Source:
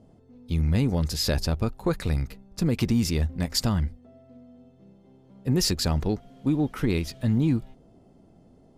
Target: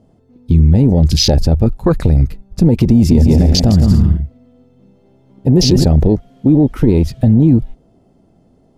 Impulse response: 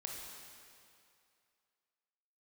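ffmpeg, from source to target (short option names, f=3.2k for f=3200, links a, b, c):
-filter_complex "[0:a]asettb=1/sr,asplit=3[a][b][c];[a]atrim=end=2.954[d];[b]atrim=start=2.95:end=5.84,asetpts=PTS-STARTPTS,afade=t=in:d=0.004:c=qsin,afade=t=out:st=2.886:d=0.004:c=qsin,aecho=1:1:160|264|331.6|375.5|404.1:0.631|0.398|0.251|0.158|0.1,atrim=end_sample=127449[e];[c]atrim=start=5.836[f];[d][e]acrossfade=d=0.004:c1=hsin:c2=qsin[g];[g][f]acrossfade=d=0.004:c1=qsin:c2=hsin,afwtdn=0.0398,alimiter=level_in=21dB:limit=-1dB:release=50:level=0:latency=1,volume=-1dB"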